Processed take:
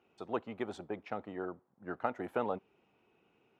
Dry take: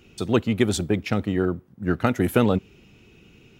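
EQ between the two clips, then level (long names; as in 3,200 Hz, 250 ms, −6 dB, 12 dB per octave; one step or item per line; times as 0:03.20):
resonant band-pass 840 Hz, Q 1.8
−5.5 dB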